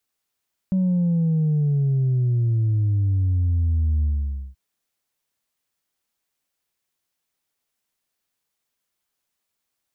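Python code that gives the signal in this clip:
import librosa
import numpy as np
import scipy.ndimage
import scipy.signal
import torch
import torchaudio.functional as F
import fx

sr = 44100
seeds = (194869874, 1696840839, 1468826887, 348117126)

y = fx.sub_drop(sr, level_db=-17.5, start_hz=190.0, length_s=3.83, drive_db=1.0, fade_s=0.52, end_hz=65.0)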